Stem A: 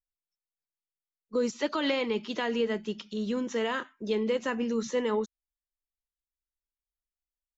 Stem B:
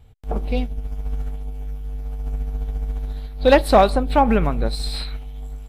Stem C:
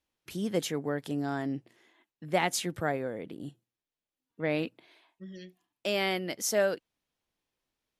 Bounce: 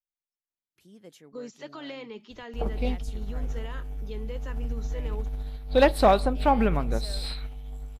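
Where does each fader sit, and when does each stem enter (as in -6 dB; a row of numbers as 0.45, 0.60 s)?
-11.5, -5.5, -19.5 dB; 0.00, 2.30, 0.50 s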